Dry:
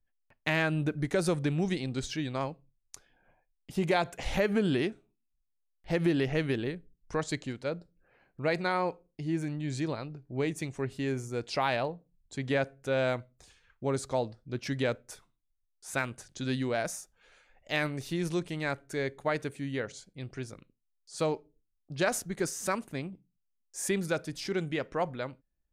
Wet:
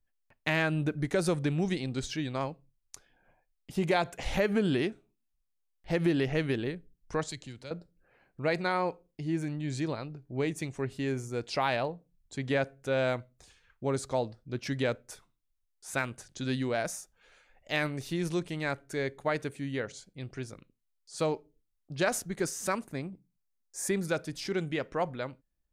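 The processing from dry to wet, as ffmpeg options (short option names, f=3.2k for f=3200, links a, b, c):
-filter_complex "[0:a]asettb=1/sr,asplit=3[a][b][c];[a]atrim=end=7.294[d];[b]atrim=start=7.29:end=7.71,asetpts=PTS-STARTPTS,afade=t=in:d=0.004:c=qsin,afade=t=out:st=0.416:d=0.004:c=qsin,acrossover=split=120|3000[e][f][g];[f]acompressor=threshold=-53dB:ratio=2:attack=3.2:release=140:knee=2.83:detection=peak[h];[e][h][g]amix=inputs=3:normalize=0[i];[c]atrim=start=7.706[j];[d][i]acrossfade=d=0.004:c1=hsin:c2=qsin[k];[k][j]acrossfade=d=0.004:c1=qsin:c2=hsin,asettb=1/sr,asplit=3[l][m][n];[l]atrim=end=22.824[o];[m]atrim=start=22.82:end=24.06,asetpts=PTS-STARTPTS,afade=t=in:d=0.004:c=qsin,afade=t=out:st=1.236:d=0.004:c=qsin,equalizer=f=3k:t=o:w=0.5:g=-8[p];[n]atrim=start=24.056[q];[o][p]acrossfade=d=0.004:c1=hsin:c2=qsin[r];[r][q]acrossfade=d=0.004:c1=qsin:c2=hsin"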